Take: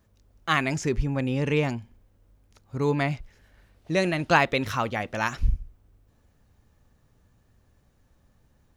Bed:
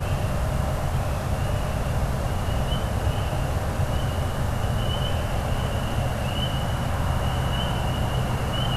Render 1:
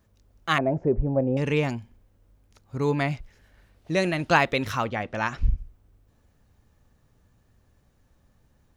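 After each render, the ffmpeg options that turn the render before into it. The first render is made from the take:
ffmpeg -i in.wav -filter_complex "[0:a]asettb=1/sr,asplit=3[link_01][link_02][link_03];[link_01]atrim=end=0.584[link_04];[link_02]atrim=start=0.58:end=1.37,asetpts=PTS-STARTPTS,afade=type=in:duration=0.004:curve=qsin,afade=type=out:start_time=0.786:duration=0.004:curve=qsin,lowpass=frequency=620:width_type=q:width=3.6[link_05];[link_03]atrim=start=1.366[link_06];[link_04][link_05]acrossfade=duration=0.004:curve1=hsin:curve2=qsin[link_07];[link_07][link_06]acrossfade=duration=0.004:curve1=qsin:curve2=hsin,asettb=1/sr,asplit=3[link_08][link_09][link_10];[link_08]atrim=end=4.844[link_11];[link_09]atrim=start=4.84:end=5.58,asetpts=PTS-STARTPTS,afade=type=in:duration=0.004:curve=qsin,afade=type=out:start_time=0.736:duration=0.004:curve=qsin,aemphasis=mode=reproduction:type=50fm[link_12];[link_10]atrim=start=5.576[link_13];[link_11][link_12]acrossfade=duration=0.004:curve1=hsin:curve2=qsin[link_14];[link_14][link_13]acrossfade=duration=0.004:curve1=qsin:curve2=hsin" out.wav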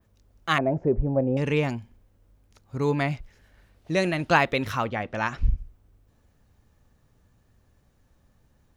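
ffmpeg -i in.wav -af "adynamicequalizer=threshold=0.00501:dfrequency=6400:dqfactor=0.89:tfrequency=6400:tqfactor=0.89:attack=5:release=100:ratio=0.375:range=2:mode=cutabove:tftype=bell" out.wav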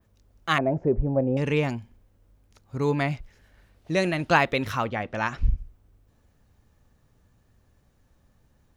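ffmpeg -i in.wav -af anull out.wav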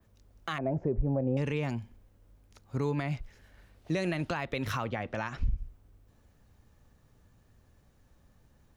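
ffmpeg -i in.wav -filter_complex "[0:a]acrossover=split=130[link_01][link_02];[link_02]acompressor=threshold=-29dB:ratio=2[link_03];[link_01][link_03]amix=inputs=2:normalize=0,alimiter=limit=-20.5dB:level=0:latency=1:release=99" out.wav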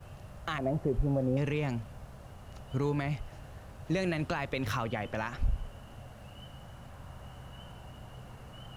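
ffmpeg -i in.wav -i bed.wav -filter_complex "[1:a]volume=-23dB[link_01];[0:a][link_01]amix=inputs=2:normalize=0" out.wav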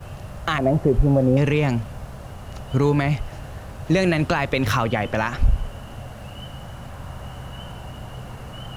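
ffmpeg -i in.wav -af "volume=12dB" out.wav

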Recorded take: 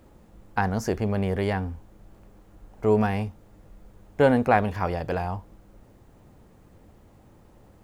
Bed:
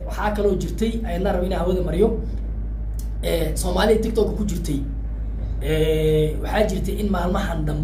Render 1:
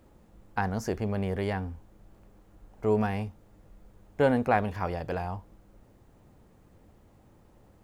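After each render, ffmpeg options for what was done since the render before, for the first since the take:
ffmpeg -i in.wav -af "volume=-4.5dB" out.wav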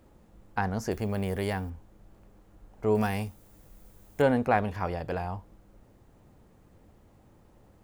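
ffmpeg -i in.wav -filter_complex "[0:a]asettb=1/sr,asplit=3[link_01][link_02][link_03];[link_01]atrim=end=0.914[link_04];[link_02]atrim=start=0.91:end=1.7,asetpts=PTS-STARTPTS,afade=type=in:duration=0.004:curve=qsin,afade=type=out:start_time=0.786:duration=0.004:curve=qsin,aemphasis=mode=production:type=50fm[link_05];[link_03]atrim=start=1.696[link_06];[link_04][link_05]acrossfade=duration=0.004:curve1=hsin:curve2=qsin[link_07];[link_07][link_06]acrossfade=duration=0.004:curve1=qsin:curve2=hsin,asettb=1/sr,asplit=3[link_08][link_09][link_10];[link_08]atrim=end=2.954[link_11];[link_09]atrim=start=2.95:end=4.22,asetpts=PTS-STARTPTS,afade=type=in:duration=0.004:curve=qsin,afade=type=out:start_time=1.266:duration=0.004:curve=qsin,aemphasis=mode=production:type=75kf[link_12];[link_10]atrim=start=4.216[link_13];[link_11][link_12]acrossfade=duration=0.004:curve1=hsin:curve2=qsin[link_14];[link_14][link_13]acrossfade=duration=0.004:curve1=qsin:curve2=hsin,asettb=1/sr,asplit=3[link_15][link_16][link_17];[link_15]atrim=end=4.874[link_18];[link_16]atrim=start=4.87:end=5.36,asetpts=PTS-STARTPTS,afade=type=in:duration=0.004:curve=qsin,afade=type=out:start_time=0.486:duration=0.004:curve=qsin,bandreject=frequency=6100:width=11[link_19];[link_17]atrim=start=5.356[link_20];[link_18][link_19]acrossfade=duration=0.004:curve1=hsin:curve2=qsin[link_21];[link_21][link_20]acrossfade=duration=0.004:curve1=qsin:curve2=hsin" out.wav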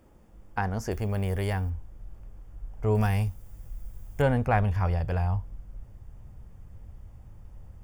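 ffmpeg -i in.wav -af "asubboost=boost=8.5:cutoff=100,bandreject=frequency=4000:width=6.1" out.wav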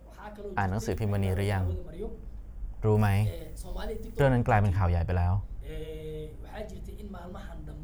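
ffmpeg -i in.wav -i bed.wav -filter_complex "[1:a]volume=-21dB[link_01];[0:a][link_01]amix=inputs=2:normalize=0" out.wav

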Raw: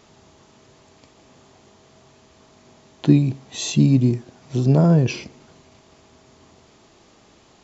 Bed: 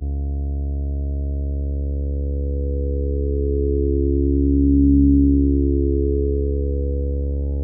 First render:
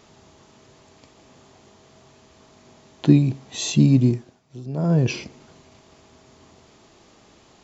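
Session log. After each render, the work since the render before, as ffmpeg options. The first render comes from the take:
ffmpeg -i in.wav -filter_complex "[0:a]asplit=3[link_01][link_02][link_03];[link_01]atrim=end=4.43,asetpts=PTS-STARTPTS,afade=type=out:start_time=4.08:duration=0.35:silence=0.158489[link_04];[link_02]atrim=start=4.43:end=4.72,asetpts=PTS-STARTPTS,volume=-16dB[link_05];[link_03]atrim=start=4.72,asetpts=PTS-STARTPTS,afade=type=in:duration=0.35:silence=0.158489[link_06];[link_04][link_05][link_06]concat=n=3:v=0:a=1" out.wav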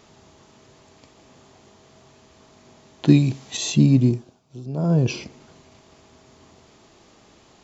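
ffmpeg -i in.wav -filter_complex "[0:a]asettb=1/sr,asplit=3[link_01][link_02][link_03];[link_01]atrim=end=3.084[link_04];[link_02]atrim=start=3.08:end=3.57,asetpts=PTS-STARTPTS,afade=type=in:duration=0.004:curve=qsin,afade=type=out:start_time=0.486:duration=0.004:curve=qsin,highshelf=frequency=2100:gain=9.5[link_05];[link_03]atrim=start=3.566[link_06];[link_04][link_05]acrossfade=duration=0.004:curve1=hsin:curve2=qsin[link_07];[link_07][link_06]acrossfade=duration=0.004:curve1=qsin:curve2=hsin,asettb=1/sr,asplit=3[link_08][link_09][link_10];[link_08]atrim=end=4.094[link_11];[link_09]atrim=start=4.09:end=5.21,asetpts=PTS-STARTPTS,afade=type=in:duration=0.004:curve=qsin,afade=type=out:start_time=1.116:duration=0.004:curve=qsin,equalizer=frequency=1900:width_type=o:width=0.45:gain=-9[link_12];[link_10]atrim=start=5.206[link_13];[link_11][link_12]acrossfade=duration=0.004:curve1=hsin:curve2=qsin[link_14];[link_14][link_13]acrossfade=duration=0.004:curve1=qsin:curve2=hsin" out.wav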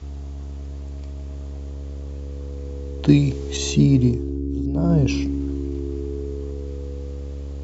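ffmpeg -i in.wav -i bed.wav -filter_complex "[1:a]volume=-9dB[link_01];[0:a][link_01]amix=inputs=2:normalize=0" out.wav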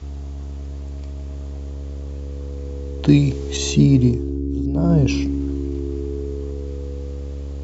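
ffmpeg -i in.wav -af "volume=2dB,alimiter=limit=-2dB:level=0:latency=1" out.wav

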